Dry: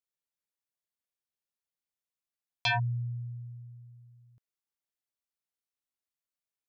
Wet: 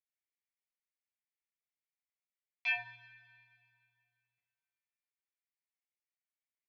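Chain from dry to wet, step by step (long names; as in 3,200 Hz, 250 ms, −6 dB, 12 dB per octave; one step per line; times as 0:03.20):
resonant band-pass 2,100 Hz, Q 4.2
coupled-rooms reverb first 0.33 s, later 2.4 s, from −22 dB, DRR −5.5 dB
level −4.5 dB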